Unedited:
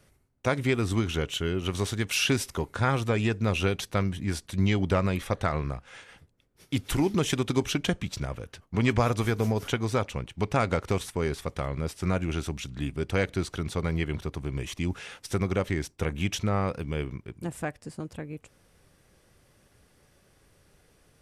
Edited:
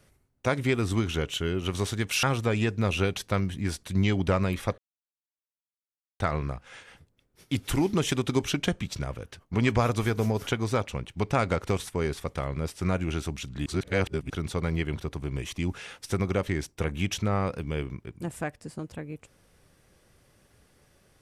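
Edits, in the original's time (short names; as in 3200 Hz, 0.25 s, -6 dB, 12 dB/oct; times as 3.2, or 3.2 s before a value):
2.23–2.86 cut
5.41 insert silence 1.42 s
12.87–13.51 reverse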